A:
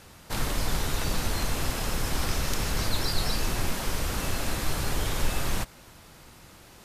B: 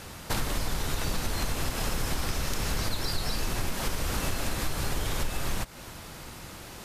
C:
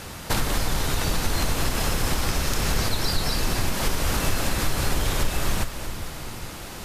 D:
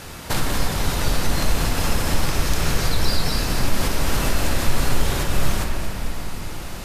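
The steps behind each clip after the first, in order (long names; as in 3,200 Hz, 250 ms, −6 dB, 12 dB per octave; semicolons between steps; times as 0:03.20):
downward compressor 6 to 1, threshold −33 dBFS, peak gain reduction 13.5 dB; level +7.5 dB
echo with a time of its own for lows and highs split 460 Hz, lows 401 ms, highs 228 ms, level −10 dB; level +5.5 dB
rectangular room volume 130 cubic metres, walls hard, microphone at 0.32 metres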